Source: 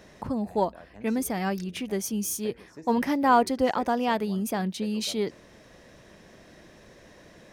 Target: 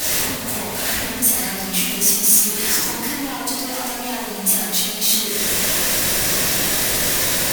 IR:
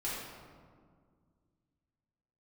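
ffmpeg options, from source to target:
-filter_complex "[0:a]aeval=exprs='val(0)+0.5*0.0531*sgn(val(0))':c=same,lowpass=f=1.7k:p=1,acompressor=threshold=-31dB:ratio=10,crystalizer=i=7:c=0,asoftclip=type=hard:threshold=-30dB,crystalizer=i=6:c=0[a];[1:a]atrim=start_sample=2205,asetrate=39249,aresample=44100[b];[a][b]afir=irnorm=-1:irlink=0,volume=-1.5dB"

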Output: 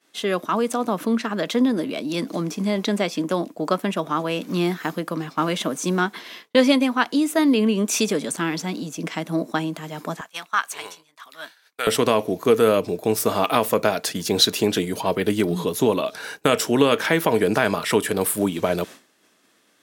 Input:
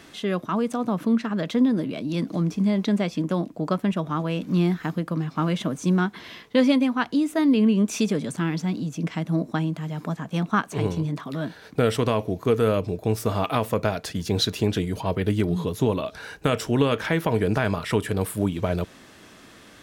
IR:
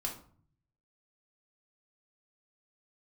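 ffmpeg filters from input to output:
-af "asetnsamples=n=441:p=0,asendcmd='10.21 highpass f 1200;11.87 highpass f 230',highpass=300,agate=range=-33dB:threshold=-37dB:ratio=3:detection=peak,highshelf=f=6.5k:g=8.5,volume=5dB"

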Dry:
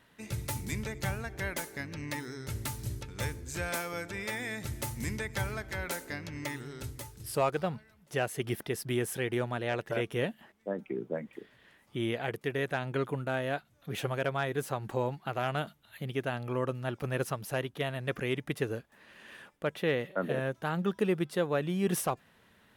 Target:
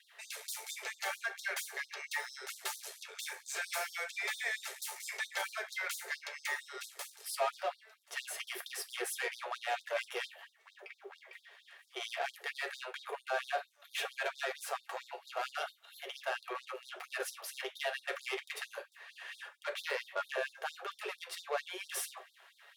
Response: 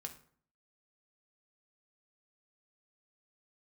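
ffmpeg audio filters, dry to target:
-filter_complex "[0:a]aeval=exprs='if(lt(val(0),0),0.447*val(0),val(0))':c=same,asplit=2[a][b];[b]highpass=f=720:p=1,volume=21dB,asoftclip=type=tanh:threshold=-17.5dB[c];[a][c]amix=inputs=2:normalize=0,lowpass=f=5.7k:p=1,volume=-6dB[d];[1:a]atrim=start_sample=2205,afade=t=out:st=0.22:d=0.01,atrim=end_sample=10143,asetrate=66150,aresample=44100[e];[d][e]afir=irnorm=-1:irlink=0,afftfilt=real='re*gte(b*sr/1024,350*pow(3600/350,0.5+0.5*sin(2*PI*4.4*pts/sr)))':imag='im*gte(b*sr/1024,350*pow(3600/350,0.5+0.5*sin(2*PI*4.4*pts/sr)))':win_size=1024:overlap=0.75,volume=1dB"

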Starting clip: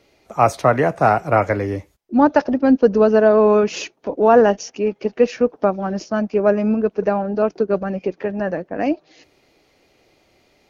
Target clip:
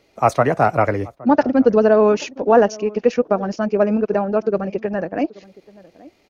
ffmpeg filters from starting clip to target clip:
-filter_complex "[0:a]asplit=2[a][b];[b]adelay=1399,volume=-21dB,highshelf=f=4k:g=-31.5[c];[a][c]amix=inputs=2:normalize=0,atempo=1.7"

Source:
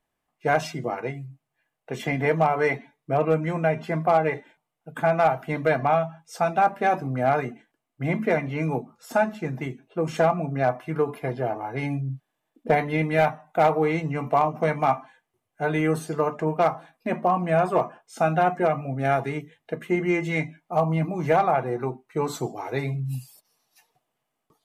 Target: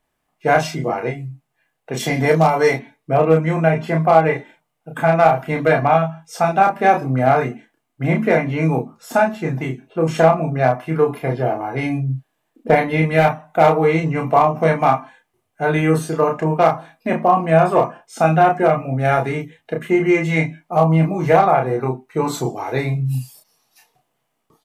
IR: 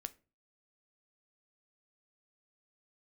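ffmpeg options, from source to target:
-filter_complex "[0:a]asettb=1/sr,asplit=3[a][b][c];[a]atrim=end=1.974[d];[b]atrim=start=1.97:end=2.76,asetpts=PTS-STARTPTS,afade=t=in:d=0.004:c=qsin,afade=t=out:st=0.786:d=0.004:c=qsin,highshelf=f=3.5k:t=q:w=1.5:g=8[e];[c]atrim=start=2.756[f];[d][e]acrossfade=d=0.004:c1=hsin:c2=qsin[g];[g][f]acrossfade=d=0.004:c1=qsin:c2=hsin,asplit=2[h][i];[i]adelay=31,volume=-3.5dB[j];[h][j]amix=inputs=2:normalize=0,volume=5.5dB"

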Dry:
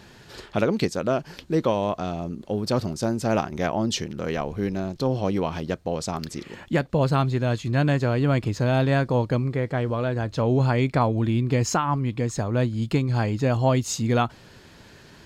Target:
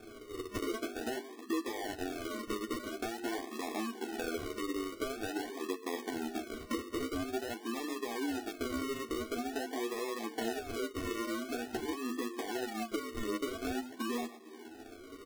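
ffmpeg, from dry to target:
-filter_complex "[0:a]equalizer=f=680:t=o:w=0.61:g=-11,adynamicsmooth=sensitivity=6:basefreq=590,asplit=2[a][b];[b]aecho=0:1:121:0.075[c];[a][c]amix=inputs=2:normalize=0,afftfilt=real='re*between(b*sr/4096,210,1100)':imag='im*between(b*sr/4096,210,1100)':win_size=4096:overlap=0.75,bandreject=f=50:t=h:w=6,bandreject=f=100:t=h:w=6,bandreject=f=150:t=h:w=6,bandreject=f=200:t=h:w=6,bandreject=f=250:t=h:w=6,bandreject=f=300:t=h:w=6,bandreject=f=350:t=h:w=6,bandreject=f=400:t=h:w=6,bandreject=f=450:t=h:w=6,acrossover=split=540[d][e];[e]asoftclip=type=tanh:threshold=-30.5dB[f];[d][f]amix=inputs=2:normalize=0,acrusher=samples=42:mix=1:aa=0.000001:lfo=1:lforange=25.2:lforate=0.47,aecho=1:1:2.7:0.81,acompressor=threshold=-39dB:ratio=12,flanger=delay=8.9:depth=4.3:regen=9:speed=0.38:shape=triangular,volume=8.5dB"

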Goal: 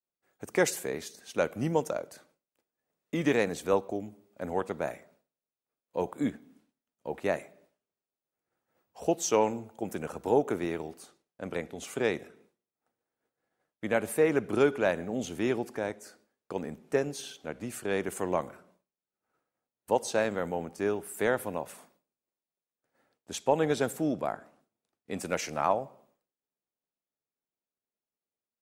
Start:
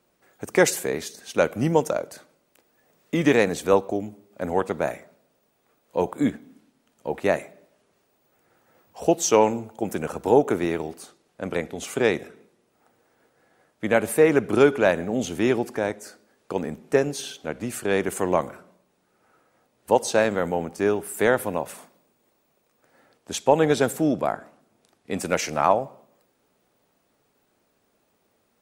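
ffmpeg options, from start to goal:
-af "agate=range=-33dB:threshold=-53dB:ratio=3:detection=peak,volume=-7.5dB"

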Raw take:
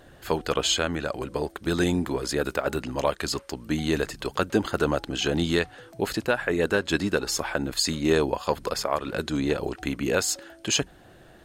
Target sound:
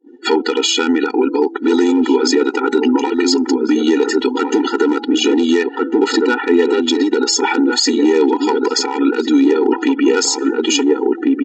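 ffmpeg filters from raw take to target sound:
-filter_complex "[0:a]afftdn=nr=32:nf=-44,equalizer=f=190:t=o:w=1.1:g=8,aresample=16000,aeval=exprs='clip(val(0),-1,0.168)':c=same,aresample=44100,asplit=2[a][b];[b]adelay=1399,volume=-8dB,highshelf=f=4k:g=-31.5[c];[a][c]amix=inputs=2:normalize=0,acompressor=threshold=-30dB:ratio=6,agate=range=-33dB:threshold=-45dB:ratio=3:detection=peak,acontrast=67,alimiter=level_in=20.5dB:limit=-1dB:release=50:level=0:latency=1,afftfilt=real='re*eq(mod(floor(b*sr/1024/250),2),1)':imag='im*eq(mod(floor(b*sr/1024/250),2),1)':win_size=1024:overlap=0.75,volume=-1dB"

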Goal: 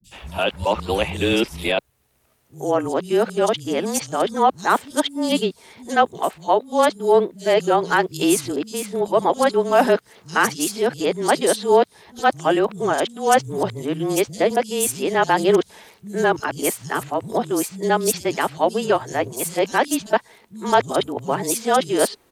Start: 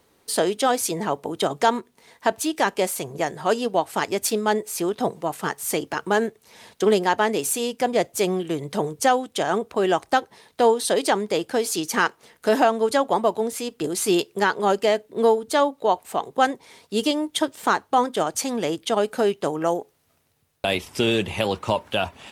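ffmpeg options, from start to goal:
-filter_complex "[0:a]areverse,afreqshift=-23,acrossover=split=170|4600[a][b][c];[c]adelay=40[d];[b]adelay=110[e];[a][e][d]amix=inputs=3:normalize=0,volume=3dB"

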